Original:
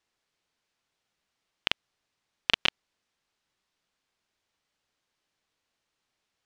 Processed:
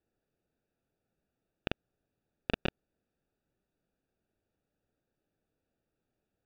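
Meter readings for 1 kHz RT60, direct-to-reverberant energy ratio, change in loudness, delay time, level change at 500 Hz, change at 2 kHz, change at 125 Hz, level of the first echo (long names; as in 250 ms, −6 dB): no reverb audible, no reverb audible, −10.0 dB, no echo audible, +3.5 dB, −10.5 dB, +7.5 dB, no echo audible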